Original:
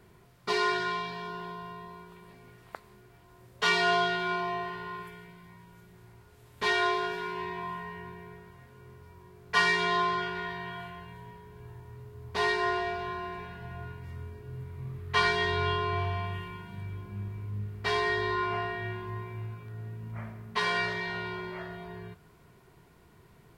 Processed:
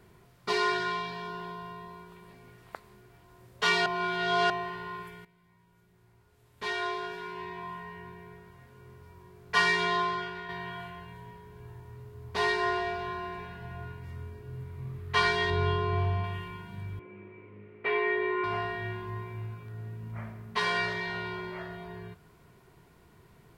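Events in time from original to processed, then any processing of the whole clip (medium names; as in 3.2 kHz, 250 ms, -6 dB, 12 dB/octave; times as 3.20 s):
3.86–4.50 s: reverse
5.25–9.13 s: fade in, from -14.5 dB
9.83–10.49 s: fade out, to -6 dB
15.50–16.24 s: tilt shelf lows +4.5 dB, about 660 Hz
16.99–18.44 s: cabinet simulation 310–2500 Hz, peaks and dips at 340 Hz +7 dB, 510 Hz +6 dB, 760 Hz -6 dB, 1.1 kHz -3 dB, 1.6 kHz -6 dB, 2.3 kHz +8 dB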